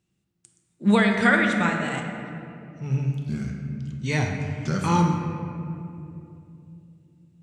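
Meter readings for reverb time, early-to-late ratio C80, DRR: 2.9 s, 5.0 dB, 2.0 dB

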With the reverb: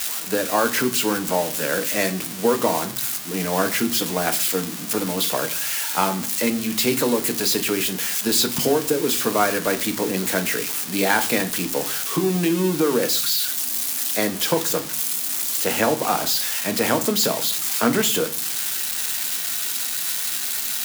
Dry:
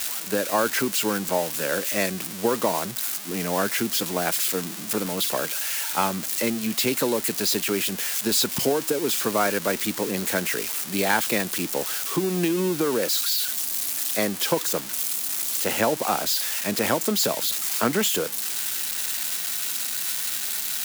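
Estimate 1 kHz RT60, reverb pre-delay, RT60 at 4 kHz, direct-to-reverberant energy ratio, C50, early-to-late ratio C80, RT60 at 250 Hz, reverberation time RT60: 0.50 s, 4 ms, 0.40 s, 7.0 dB, 15.5 dB, 20.0 dB, 0.80 s, 0.50 s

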